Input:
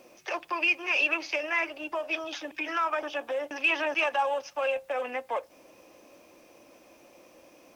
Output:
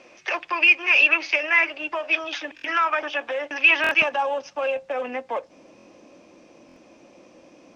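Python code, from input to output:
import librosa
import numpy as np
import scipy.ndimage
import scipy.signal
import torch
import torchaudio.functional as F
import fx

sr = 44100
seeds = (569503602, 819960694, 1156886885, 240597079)

y = scipy.signal.sosfilt(scipy.signal.butter(4, 7000.0, 'lowpass', fs=sr, output='sos'), x)
y = fx.peak_eq(y, sr, hz=fx.steps((0.0, 2100.0), (4.02, 200.0)), db=8.5, octaves=1.6)
y = fx.buffer_glitch(y, sr, at_s=(2.55, 3.82, 5.77, 6.67), block=1024, repeats=3)
y = F.gain(torch.from_numpy(y), 2.0).numpy()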